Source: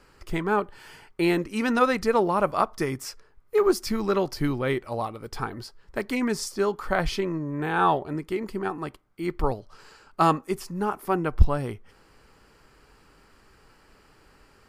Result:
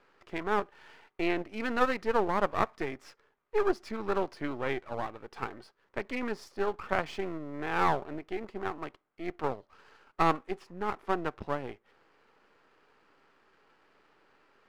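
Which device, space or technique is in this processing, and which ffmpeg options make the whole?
crystal radio: -af "highpass=310,lowpass=2800,aeval=exprs='if(lt(val(0),0),0.251*val(0),val(0))':channel_layout=same,volume=-2dB"

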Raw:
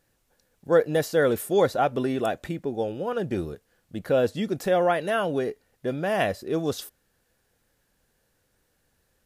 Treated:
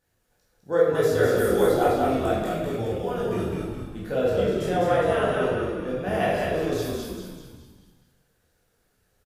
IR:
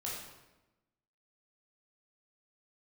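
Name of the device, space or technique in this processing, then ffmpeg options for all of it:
bathroom: -filter_complex "[0:a]asettb=1/sr,asplit=3[link_01][link_02][link_03];[link_01]atrim=end=2.364[link_04];[link_02]atrim=start=2.36:end=3.46,asetpts=PTS-STARTPTS,afade=type=in:duration=0.004:curve=qsin,afade=type=out:start_time=1.096:duration=0.004:curve=qsin,aemphasis=mode=production:type=cd[link_05];[link_03]atrim=start=3.456[link_06];[link_04][link_05]acrossfade=duration=0.004:curve1=hsin:curve2=qsin[link_07];[link_07][link_06]acrossfade=duration=0.004:curve1=qsin:curve2=hsin,asettb=1/sr,asplit=3[link_08][link_09][link_10];[link_08]atrim=end=4.424[link_11];[link_09]atrim=start=4.42:end=5.34,asetpts=PTS-STARTPTS,afade=type=in:duration=0.004:curve=qsin,afade=type=out:start_time=0.916:duration=0.004:curve=qsin,lowpass=frequency=12000:width=0.5412,lowpass=frequency=12000:width=1.3066[link_12];[link_10]atrim=start=5.336[link_13];[link_11][link_12]acrossfade=duration=0.004:curve1=hsin:curve2=qsin[link_14];[link_14][link_13]acrossfade=duration=0.004:curve1=qsin:curve2=hsin,asplit=7[link_15][link_16][link_17][link_18][link_19][link_20][link_21];[link_16]adelay=205,afreqshift=-48,volume=-3dB[link_22];[link_17]adelay=410,afreqshift=-96,volume=-9.2dB[link_23];[link_18]adelay=615,afreqshift=-144,volume=-15.4dB[link_24];[link_19]adelay=820,afreqshift=-192,volume=-21.6dB[link_25];[link_20]adelay=1025,afreqshift=-240,volume=-27.8dB[link_26];[link_21]adelay=1230,afreqshift=-288,volume=-34dB[link_27];[link_15][link_22][link_23][link_24][link_25][link_26][link_27]amix=inputs=7:normalize=0[link_28];[1:a]atrim=start_sample=2205[link_29];[link_28][link_29]afir=irnorm=-1:irlink=0,volume=-2.5dB"

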